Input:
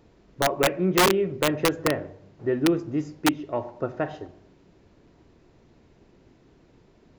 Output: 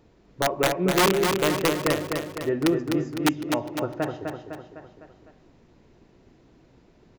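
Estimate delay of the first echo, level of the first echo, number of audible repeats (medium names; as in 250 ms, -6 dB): 253 ms, -5.0 dB, 5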